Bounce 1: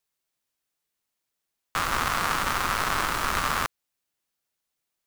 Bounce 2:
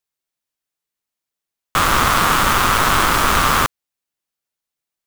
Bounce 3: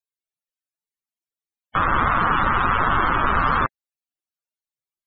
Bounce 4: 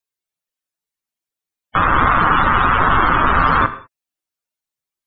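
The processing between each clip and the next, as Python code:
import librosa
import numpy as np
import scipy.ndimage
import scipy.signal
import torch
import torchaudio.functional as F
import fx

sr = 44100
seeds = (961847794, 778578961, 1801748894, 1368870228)

y1 = fx.leveller(x, sr, passes=3)
y1 = y1 * librosa.db_to_amplitude(3.0)
y2 = fx.spec_topn(y1, sr, count=64)
y2 = y2 * librosa.db_to_amplitude(-3.0)
y3 = fx.rev_gated(y2, sr, seeds[0], gate_ms=220, shape='falling', drr_db=10.0)
y3 = y3 * librosa.db_to_amplitude(5.0)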